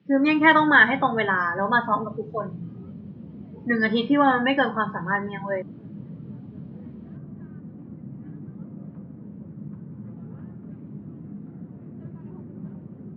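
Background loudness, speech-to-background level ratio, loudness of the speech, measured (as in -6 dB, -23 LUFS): -40.0 LUFS, 19.0 dB, -21.0 LUFS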